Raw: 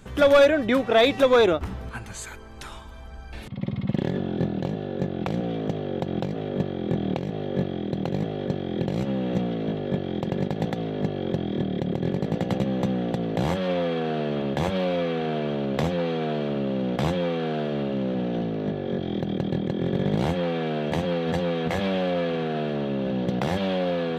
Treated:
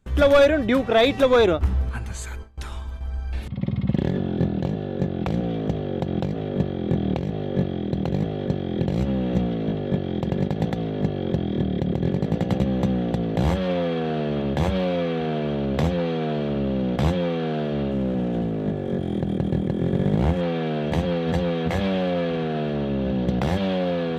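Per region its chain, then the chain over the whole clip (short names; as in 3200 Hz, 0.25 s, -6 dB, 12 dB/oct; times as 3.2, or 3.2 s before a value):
17.91–20.41 median filter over 9 samples + high shelf 8100 Hz -10 dB
whole clip: bell 69 Hz +13.5 dB 0.24 oct; gate with hold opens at -29 dBFS; low shelf 190 Hz +6 dB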